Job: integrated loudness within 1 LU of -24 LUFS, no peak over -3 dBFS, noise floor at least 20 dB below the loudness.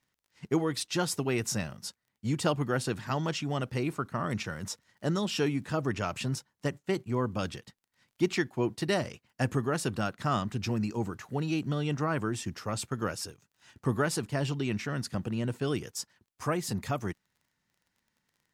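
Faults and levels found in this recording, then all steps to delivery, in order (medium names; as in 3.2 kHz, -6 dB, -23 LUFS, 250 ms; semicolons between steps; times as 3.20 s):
tick rate 21 per s; loudness -32.0 LUFS; peak level -14.0 dBFS; loudness target -24.0 LUFS
-> de-click; trim +8 dB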